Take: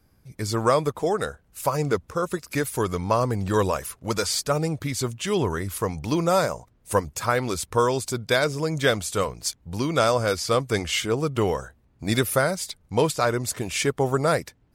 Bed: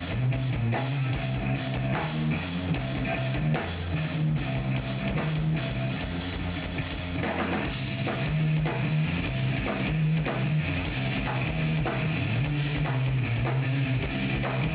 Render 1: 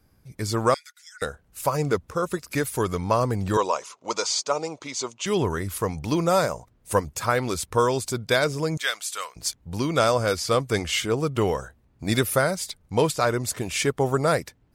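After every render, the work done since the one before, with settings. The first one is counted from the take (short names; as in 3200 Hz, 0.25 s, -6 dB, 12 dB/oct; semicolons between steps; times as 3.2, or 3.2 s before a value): 0.74–1.22 rippled Chebyshev high-pass 1400 Hz, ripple 9 dB; 3.57–5.26 speaker cabinet 410–7100 Hz, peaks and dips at 970 Hz +6 dB, 1700 Hz -9 dB, 6500 Hz +6 dB; 8.77–9.36 HPF 1300 Hz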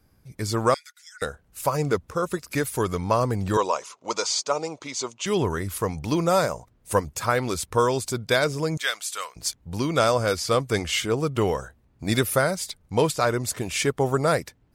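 nothing audible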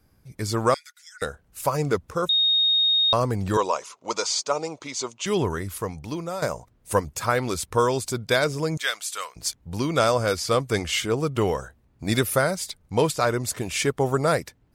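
2.29–3.13 bleep 3720 Hz -17 dBFS; 5.4–6.42 fade out, to -13 dB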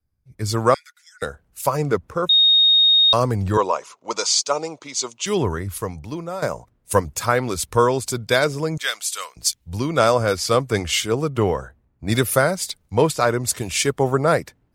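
in parallel at +1 dB: compressor, threshold -28 dBFS, peak gain reduction 13 dB; on the sum: three-band expander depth 70%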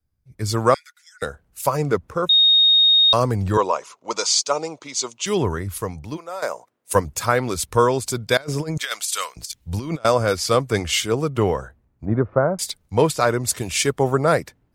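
6.16–6.94 HPF 640 Hz -> 300 Hz; 8.37–10.05 negative-ratio compressor -26 dBFS, ratio -0.5; 12.05–12.59 LPF 1200 Hz 24 dB/oct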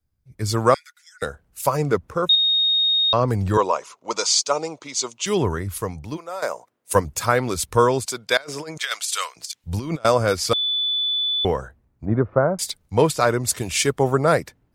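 2.35–3.28 air absorption 180 m; 8.05–9.64 weighting filter A; 10.53–11.45 bleep 3480 Hz -19.5 dBFS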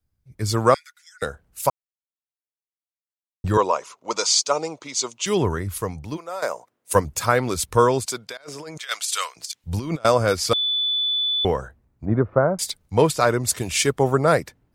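1.7–3.44 mute; 8.28–8.89 compressor 12:1, threshold -31 dBFS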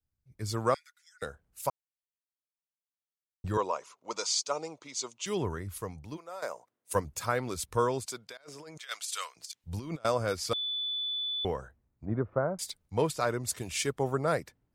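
gain -11 dB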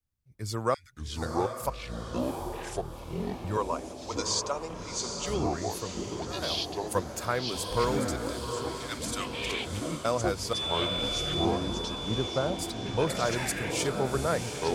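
diffused feedback echo 0.773 s, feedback 47%, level -6 dB; echoes that change speed 0.412 s, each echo -6 st, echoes 3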